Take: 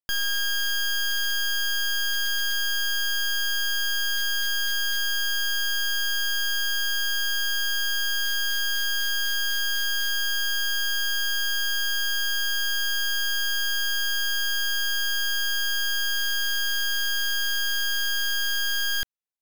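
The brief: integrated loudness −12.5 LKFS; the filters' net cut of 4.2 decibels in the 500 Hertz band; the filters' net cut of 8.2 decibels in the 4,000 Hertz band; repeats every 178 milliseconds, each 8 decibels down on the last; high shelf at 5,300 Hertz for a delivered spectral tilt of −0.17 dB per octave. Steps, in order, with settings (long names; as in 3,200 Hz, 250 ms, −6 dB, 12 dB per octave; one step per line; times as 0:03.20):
parametric band 500 Hz −6.5 dB
parametric band 4,000 Hz −8 dB
high-shelf EQ 5,300 Hz −7.5 dB
repeating echo 178 ms, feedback 40%, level −8 dB
level +17.5 dB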